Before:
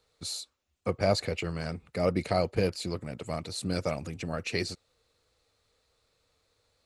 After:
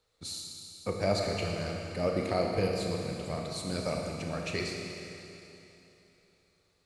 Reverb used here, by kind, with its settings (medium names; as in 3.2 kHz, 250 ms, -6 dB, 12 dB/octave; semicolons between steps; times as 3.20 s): Schroeder reverb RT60 3.1 s, combs from 27 ms, DRR 0 dB; trim -4 dB